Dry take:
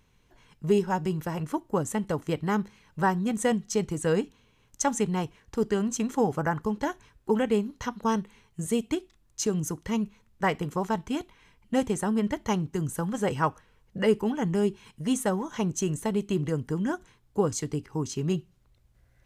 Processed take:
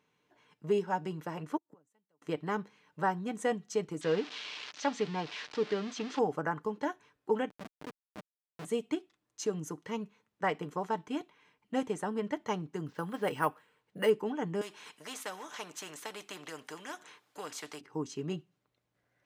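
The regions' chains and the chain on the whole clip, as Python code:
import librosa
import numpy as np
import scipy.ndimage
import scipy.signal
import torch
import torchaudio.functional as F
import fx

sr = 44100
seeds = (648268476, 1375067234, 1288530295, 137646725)

y = fx.chain(x, sr, fx.gate_flip(shuts_db=-32.0, range_db=-34),
    fx.band_widen(depth_pct=70), at=(1.57, 2.22))
y = fx.chain(y, sr, fx.crossing_spikes(level_db=-17.5),
    fx.lowpass(hz=4700.0, slope=24), at=(4.01, 6.19))
y = fx.chain(y, sr, fx.over_compress(threshold_db=-28.0, ratio=-0.5),
    fx.schmitt(flips_db=-26.0), at=(7.49, 8.65))
y = fx.chain(y, sr, fx.high_shelf(hz=2000.0, db=6.5),
    fx.resample_bad(factor=4, down='filtered', up='hold'), at=(12.86, 14.1))
y = fx.chain(y, sr, fx.highpass(hz=920.0, slope=6),
    fx.spectral_comp(ratio=2.0), at=(14.61, 17.81))
y = scipy.signal.sosfilt(scipy.signal.butter(2, 250.0, 'highpass', fs=sr, output='sos'), y)
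y = fx.high_shelf(y, sr, hz=6000.0, db=-12.0)
y = y + 0.32 * np.pad(y, (int(6.7 * sr / 1000.0), 0))[:len(y)]
y = y * librosa.db_to_amplitude(-4.5)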